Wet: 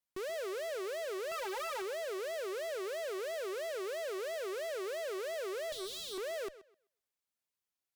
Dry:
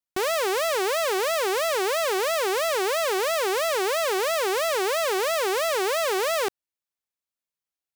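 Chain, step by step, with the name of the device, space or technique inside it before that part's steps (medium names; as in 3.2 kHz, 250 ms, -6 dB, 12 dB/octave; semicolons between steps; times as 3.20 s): 1.31–1.82 s: comb 5.6 ms, depth 90%; 5.72–6.18 s: Chebyshev band-stop 340–3600 Hz, order 4; rockabilly slapback (valve stage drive 38 dB, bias 0.3; tape echo 127 ms, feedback 23%, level -15 dB, low-pass 5.6 kHz)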